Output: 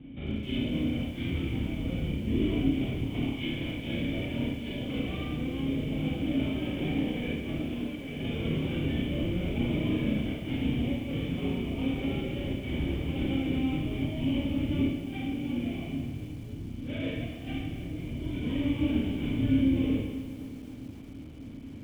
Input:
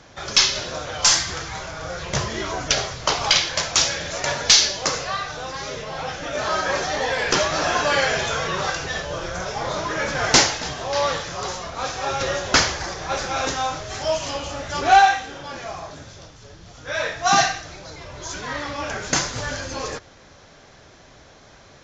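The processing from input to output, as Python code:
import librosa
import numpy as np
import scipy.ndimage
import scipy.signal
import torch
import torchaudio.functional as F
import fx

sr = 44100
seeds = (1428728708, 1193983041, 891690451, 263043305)

p1 = fx.halfwave_hold(x, sr)
p2 = fx.highpass(p1, sr, hz=51.0, slope=6)
p3 = fx.low_shelf(p2, sr, hz=150.0, db=10.0)
p4 = fx.over_compress(p3, sr, threshold_db=-20.0, ratio=-0.5)
p5 = fx.formant_cascade(p4, sr, vowel='i')
p6 = fx.air_absorb(p5, sr, metres=120.0)
p7 = p6 + fx.echo_bbd(p6, sr, ms=289, stages=2048, feedback_pct=81, wet_db=-21.5, dry=0)
p8 = fx.rev_schroeder(p7, sr, rt60_s=0.83, comb_ms=26, drr_db=-2.0)
y = fx.echo_crushed(p8, sr, ms=259, feedback_pct=55, bits=8, wet_db=-12.0)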